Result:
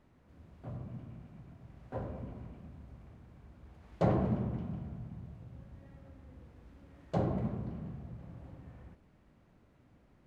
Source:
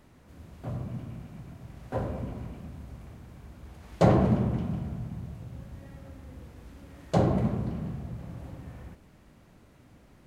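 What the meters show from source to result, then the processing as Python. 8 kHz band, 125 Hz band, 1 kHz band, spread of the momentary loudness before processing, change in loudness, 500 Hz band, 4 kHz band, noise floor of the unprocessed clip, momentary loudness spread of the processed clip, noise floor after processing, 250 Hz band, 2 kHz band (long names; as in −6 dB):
can't be measured, −8.0 dB, −8.5 dB, 23 LU, −8.0 dB, −8.0 dB, below −10 dB, −57 dBFS, 23 LU, −65 dBFS, −8.0 dB, −9.5 dB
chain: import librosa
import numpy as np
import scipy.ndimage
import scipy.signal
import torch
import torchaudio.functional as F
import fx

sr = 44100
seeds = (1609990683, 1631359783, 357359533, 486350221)

y = fx.lowpass(x, sr, hz=2600.0, slope=6)
y = F.gain(torch.from_numpy(y), -8.0).numpy()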